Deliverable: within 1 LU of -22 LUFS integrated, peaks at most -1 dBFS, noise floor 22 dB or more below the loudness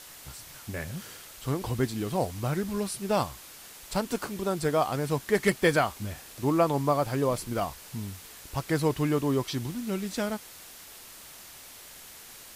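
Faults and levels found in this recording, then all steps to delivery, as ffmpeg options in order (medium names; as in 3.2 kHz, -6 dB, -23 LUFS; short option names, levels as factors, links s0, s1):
noise floor -48 dBFS; noise floor target -52 dBFS; loudness -29.5 LUFS; peak level -11.5 dBFS; loudness target -22.0 LUFS
-> -af "afftdn=nr=6:nf=-48"
-af "volume=2.37"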